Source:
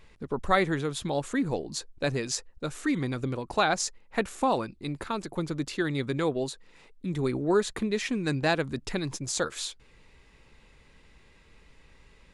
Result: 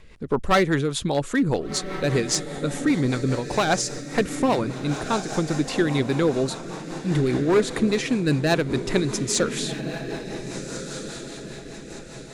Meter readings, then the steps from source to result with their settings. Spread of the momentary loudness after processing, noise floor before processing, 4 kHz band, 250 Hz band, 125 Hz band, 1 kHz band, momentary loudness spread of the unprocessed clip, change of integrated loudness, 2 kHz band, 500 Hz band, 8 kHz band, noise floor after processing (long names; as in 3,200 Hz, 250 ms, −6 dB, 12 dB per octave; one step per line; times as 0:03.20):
12 LU, −59 dBFS, +6.0 dB, +7.5 dB, +8.0 dB, +3.5 dB, 10 LU, +5.5 dB, +4.5 dB, +6.5 dB, +6.5 dB, −40 dBFS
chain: hard clipping −21 dBFS, distortion −14 dB
feedback delay with all-pass diffusion 1,502 ms, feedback 43%, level −9 dB
rotating-speaker cabinet horn 5 Hz
level +8.5 dB